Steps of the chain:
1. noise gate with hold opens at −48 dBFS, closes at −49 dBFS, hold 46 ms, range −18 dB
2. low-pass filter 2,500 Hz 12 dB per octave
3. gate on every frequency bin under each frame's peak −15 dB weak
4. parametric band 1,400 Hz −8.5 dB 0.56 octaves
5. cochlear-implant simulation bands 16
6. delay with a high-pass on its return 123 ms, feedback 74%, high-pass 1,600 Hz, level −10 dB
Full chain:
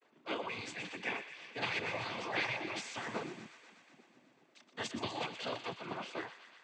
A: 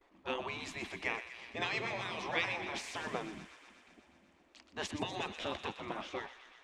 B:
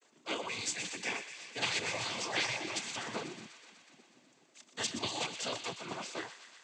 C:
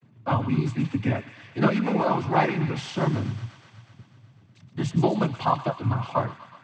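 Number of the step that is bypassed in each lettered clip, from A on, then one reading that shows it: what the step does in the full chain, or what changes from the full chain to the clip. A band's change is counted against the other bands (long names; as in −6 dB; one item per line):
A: 5, change in crest factor +3.5 dB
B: 2, 8 kHz band +13.0 dB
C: 3, 125 Hz band +17.0 dB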